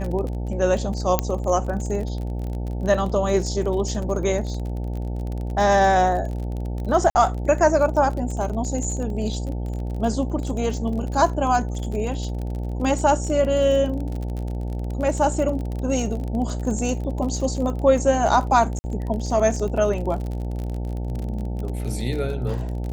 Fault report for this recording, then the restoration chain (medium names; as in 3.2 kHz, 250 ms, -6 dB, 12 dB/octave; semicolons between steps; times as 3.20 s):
buzz 60 Hz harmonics 15 -27 dBFS
crackle 35 per s -29 dBFS
1.19 s: pop -4 dBFS
7.10–7.15 s: dropout 50 ms
18.79–18.84 s: dropout 50 ms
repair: de-click; de-hum 60 Hz, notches 15; interpolate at 7.10 s, 50 ms; interpolate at 18.79 s, 50 ms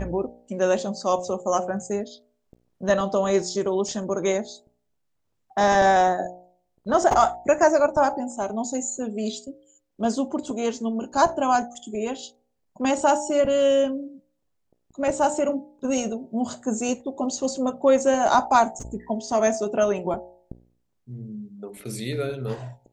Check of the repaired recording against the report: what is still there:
1.19 s: pop